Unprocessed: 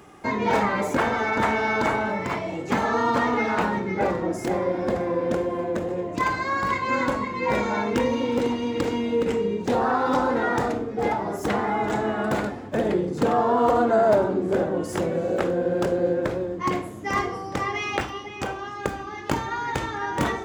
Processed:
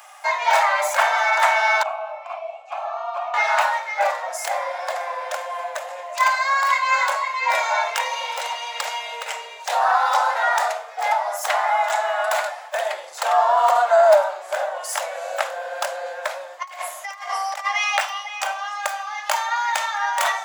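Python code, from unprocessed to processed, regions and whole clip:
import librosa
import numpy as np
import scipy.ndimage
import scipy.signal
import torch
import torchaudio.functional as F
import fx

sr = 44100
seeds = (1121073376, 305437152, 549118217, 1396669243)

y = fx.chain(x, sr, fx.vowel_filter(vowel='a'),
    fx.high_shelf(hz=10000.0, db=7.0), at=(1.83, 3.34))
y = fx.chain(y, sr, fx.low_shelf(hz=100.0, db=-12.0),
    fx.over_compress(threshold_db=-32.0, ratio=-0.5), at=(16.62, 17.66))
y = scipy.signal.sosfilt(scipy.signal.cheby1(6, 1.0, 600.0, 'highpass', fs=sr, output='sos'), y)
y = fx.high_shelf(y, sr, hz=5200.0, db=8.5)
y = y * librosa.db_to_amplitude(6.5)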